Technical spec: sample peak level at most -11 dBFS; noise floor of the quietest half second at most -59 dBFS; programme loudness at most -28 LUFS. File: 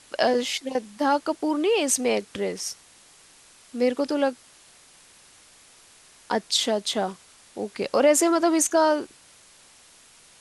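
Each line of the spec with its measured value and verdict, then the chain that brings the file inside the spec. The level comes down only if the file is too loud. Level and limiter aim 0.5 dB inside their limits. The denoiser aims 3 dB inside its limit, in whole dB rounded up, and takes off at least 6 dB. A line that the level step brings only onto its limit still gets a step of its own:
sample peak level -8.5 dBFS: fail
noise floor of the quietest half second -53 dBFS: fail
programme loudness -24.0 LUFS: fail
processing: noise reduction 6 dB, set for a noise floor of -53 dBFS; trim -4.5 dB

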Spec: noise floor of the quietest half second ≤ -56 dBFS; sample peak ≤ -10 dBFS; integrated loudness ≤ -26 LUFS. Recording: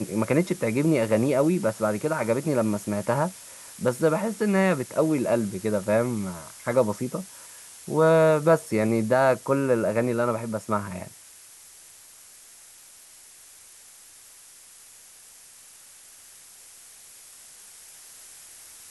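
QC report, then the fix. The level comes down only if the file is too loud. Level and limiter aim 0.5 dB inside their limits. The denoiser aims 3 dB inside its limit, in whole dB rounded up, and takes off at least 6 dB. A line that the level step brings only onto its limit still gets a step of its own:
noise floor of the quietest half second -50 dBFS: fail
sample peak -7.5 dBFS: fail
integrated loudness -24.0 LUFS: fail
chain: noise reduction 7 dB, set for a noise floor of -50 dBFS; trim -2.5 dB; peak limiter -10.5 dBFS

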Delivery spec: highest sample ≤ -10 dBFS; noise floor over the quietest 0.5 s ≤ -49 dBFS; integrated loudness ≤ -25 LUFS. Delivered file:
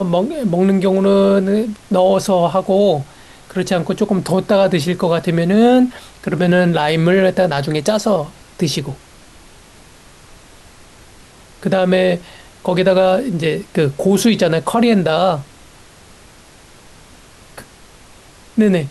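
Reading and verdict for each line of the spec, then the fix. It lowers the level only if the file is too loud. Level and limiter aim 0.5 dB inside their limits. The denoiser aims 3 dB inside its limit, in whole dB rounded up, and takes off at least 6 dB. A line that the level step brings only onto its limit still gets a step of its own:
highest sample -3.5 dBFS: fail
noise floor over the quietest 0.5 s -43 dBFS: fail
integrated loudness -15.5 LUFS: fail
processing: trim -10 dB

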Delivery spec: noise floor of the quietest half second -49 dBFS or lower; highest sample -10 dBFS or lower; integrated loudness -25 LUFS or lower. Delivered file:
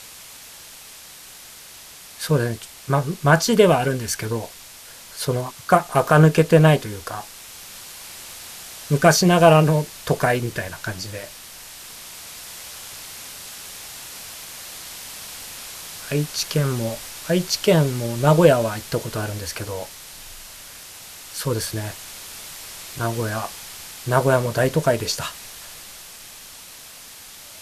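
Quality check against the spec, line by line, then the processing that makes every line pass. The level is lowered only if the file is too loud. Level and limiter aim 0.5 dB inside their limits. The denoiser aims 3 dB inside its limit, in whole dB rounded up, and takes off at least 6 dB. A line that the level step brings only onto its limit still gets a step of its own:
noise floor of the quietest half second -42 dBFS: fail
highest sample -2.0 dBFS: fail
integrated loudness -20.0 LUFS: fail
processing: noise reduction 6 dB, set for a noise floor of -42 dBFS; trim -5.5 dB; peak limiter -10.5 dBFS

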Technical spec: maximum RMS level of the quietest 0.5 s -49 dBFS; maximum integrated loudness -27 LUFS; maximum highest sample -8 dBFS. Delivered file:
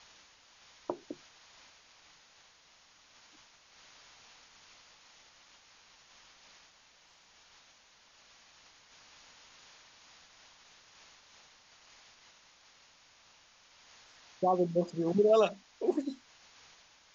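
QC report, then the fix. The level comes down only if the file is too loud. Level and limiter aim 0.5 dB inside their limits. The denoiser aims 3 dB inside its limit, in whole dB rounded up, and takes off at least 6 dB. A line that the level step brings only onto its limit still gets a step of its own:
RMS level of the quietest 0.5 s -63 dBFS: pass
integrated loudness -31.0 LUFS: pass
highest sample -15.0 dBFS: pass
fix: none needed

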